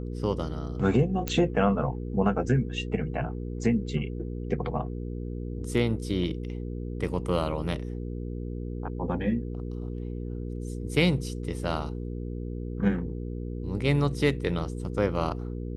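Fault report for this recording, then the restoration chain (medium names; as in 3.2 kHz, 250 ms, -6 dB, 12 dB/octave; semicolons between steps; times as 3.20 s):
hum 60 Hz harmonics 8 -34 dBFS
1.28 s: pop -13 dBFS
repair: de-click; de-hum 60 Hz, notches 8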